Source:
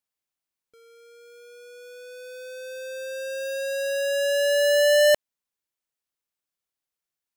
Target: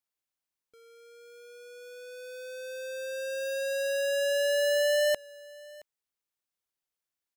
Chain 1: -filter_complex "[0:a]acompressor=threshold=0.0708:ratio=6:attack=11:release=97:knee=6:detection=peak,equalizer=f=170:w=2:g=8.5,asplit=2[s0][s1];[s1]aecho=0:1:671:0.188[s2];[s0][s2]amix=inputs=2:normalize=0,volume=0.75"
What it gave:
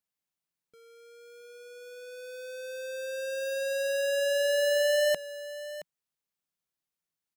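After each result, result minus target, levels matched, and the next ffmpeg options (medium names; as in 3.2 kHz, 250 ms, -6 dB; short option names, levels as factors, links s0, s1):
125 Hz band +6.5 dB; echo-to-direct +8 dB
-filter_complex "[0:a]acompressor=threshold=0.0708:ratio=6:attack=11:release=97:knee=6:detection=peak,equalizer=f=170:w=2:g=-2,asplit=2[s0][s1];[s1]aecho=0:1:671:0.188[s2];[s0][s2]amix=inputs=2:normalize=0,volume=0.75"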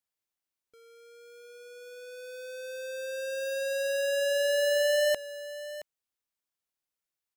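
echo-to-direct +8 dB
-filter_complex "[0:a]acompressor=threshold=0.0708:ratio=6:attack=11:release=97:knee=6:detection=peak,equalizer=f=170:w=2:g=-2,asplit=2[s0][s1];[s1]aecho=0:1:671:0.075[s2];[s0][s2]amix=inputs=2:normalize=0,volume=0.75"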